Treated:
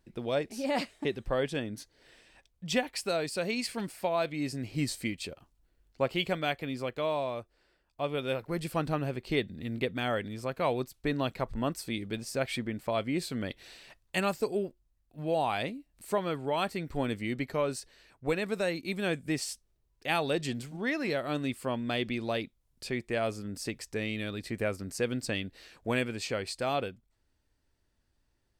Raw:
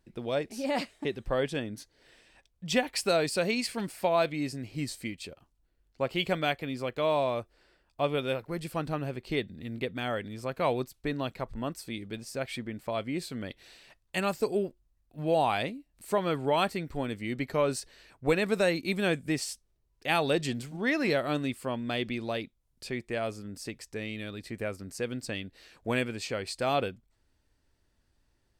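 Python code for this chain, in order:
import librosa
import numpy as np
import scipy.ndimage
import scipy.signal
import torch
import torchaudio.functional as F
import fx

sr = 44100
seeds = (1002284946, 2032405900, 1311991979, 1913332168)

y = fx.rider(x, sr, range_db=4, speed_s=0.5)
y = F.gain(torch.from_numpy(y), -1.0).numpy()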